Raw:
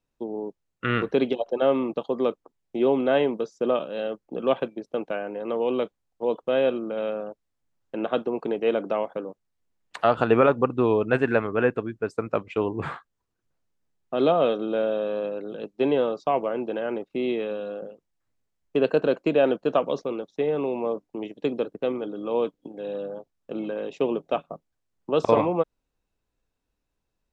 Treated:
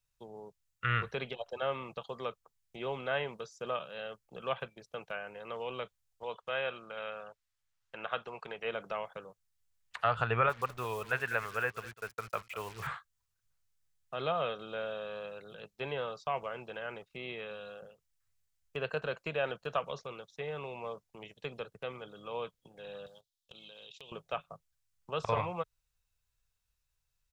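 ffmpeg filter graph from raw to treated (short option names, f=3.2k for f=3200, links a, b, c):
-filter_complex "[0:a]asettb=1/sr,asplit=3[a][b][c];[a]atrim=end=6.234[d];[b]atrim=start=6.23:end=8.65,asetpts=PTS-STARTPTS,afade=t=in:d=0.004:c=qsin,afade=t=out:st=2.416:d=0.004:c=qsin,lowpass=f=3k:p=1,tiltshelf=f=650:g=-5.5[e];[c]atrim=start=8.646[f];[d][e]acrossfade=d=0.004:c1=hsin:c2=qsin[g];[g][f]acrossfade=d=0.004:c1=qsin:c2=hsin,asettb=1/sr,asplit=3[h][i][j];[h]atrim=end=10.494[k];[i]atrim=start=10.49:end=12.87,asetpts=PTS-STARTPTS,afade=t=in:d=0.004:c=qsin,afade=t=out:st=2.376:d=0.004:c=qsin,highpass=f=330:p=1,acrusher=bits=6:mix=0:aa=0.5,aecho=1:1:200:0.133,atrim=end_sample=104958[l];[j]atrim=start=12.866[m];[k][l]acrossfade=d=0.004:c1=hsin:c2=qsin[n];[n][m]acrossfade=d=0.004:c1=qsin:c2=hsin,asettb=1/sr,asplit=3[o][p][q];[o]atrim=end=23.064[r];[p]atrim=start=23.06:end=24.12,asetpts=PTS-STARTPTS,afade=t=in:d=0.004:c=qsin,afade=t=out:st=1.056:d=0.004:c=qsin,agate=range=-16dB:threshold=-38dB:ratio=16:release=100:detection=peak,highshelf=f=2.5k:t=q:w=3:g=12.5,acompressor=threshold=-41dB:ratio=4:attack=3.2:release=140:knee=1:detection=peak[s];[q]atrim=start=24.116[t];[r][s]acrossfade=d=0.004:c1=hsin:c2=qsin[u];[u][t]acrossfade=d=0.004:c1=qsin:c2=hsin,firequalizer=gain_entry='entry(110,0);entry(280,-26);entry(430,-14);entry(1300,-3)':delay=0.05:min_phase=1,acrossover=split=2900[v][w];[w]acompressor=threshold=-58dB:ratio=4:attack=1:release=60[x];[v][x]amix=inputs=2:normalize=0,highshelf=f=3.7k:g=10.5,volume=-1.5dB"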